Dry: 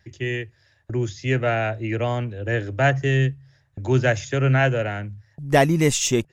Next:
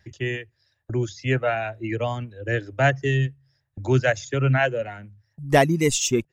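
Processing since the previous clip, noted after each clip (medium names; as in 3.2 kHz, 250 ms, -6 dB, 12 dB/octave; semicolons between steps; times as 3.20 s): reverb removal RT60 1.9 s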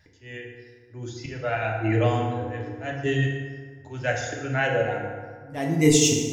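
slow attack 443 ms; FDN reverb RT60 1.7 s, low-frequency decay 1×, high-frequency decay 0.55×, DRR -1.5 dB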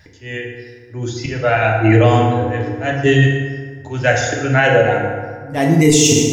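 loudness maximiser +13 dB; trim -1 dB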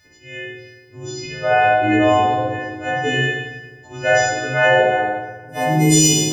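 partials quantised in pitch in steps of 3 st; dynamic bell 620 Hz, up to +6 dB, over -25 dBFS, Q 0.7; spring tank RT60 1 s, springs 51 ms, chirp 45 ms, DRR -2.5 dB; trim -11 dB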